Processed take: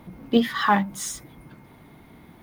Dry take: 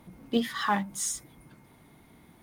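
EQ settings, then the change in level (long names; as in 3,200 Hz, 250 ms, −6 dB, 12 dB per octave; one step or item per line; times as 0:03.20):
parametric band 8,500 Hz −9.5 dB 1.5 octaves
+7.5 dB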